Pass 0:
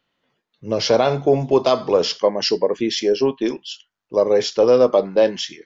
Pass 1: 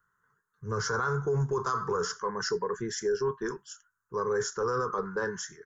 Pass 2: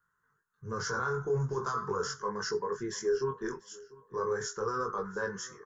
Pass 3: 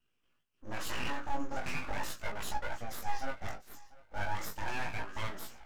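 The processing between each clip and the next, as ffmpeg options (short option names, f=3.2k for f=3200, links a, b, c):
-filter_complex "[0:a]firequalizer=gain_entry='entry(110,0);entry(180,-5);entry(280,-23);entry(420,-4);entry(610,-29);entry(1000,1);entry(1500,9);entry(2400,-29);entry(4300,-22);entry(6800,2)':delay=0.05:min_phase=1,acrossover=split=3200[a][b];[a]alimiter=limit=-21.5dB:level=0:latency=1:release=17[c];[c][b]amix=inputs=2:normalize=0"
-af "flanger=delay=19:depth=4.9:speed=0.41,aecho=1:1:693|1386:0.0794|0.0262"
-af "aeval=exprs='abs(val(0))':c=same,flanger=delay=16.5:depth=4:speed=0.37,volume=2dB"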